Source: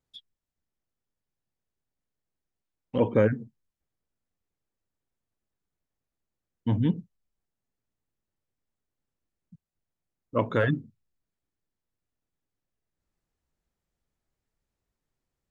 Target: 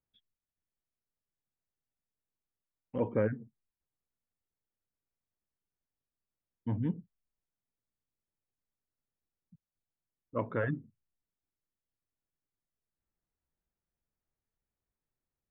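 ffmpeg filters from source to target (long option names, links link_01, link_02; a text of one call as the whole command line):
ffmpeg -i in.wav -af "lowpass=frequency=2300:width=0.5412,lowpass=frequency=2300:width=1.3066,volume=-8dB" out.wav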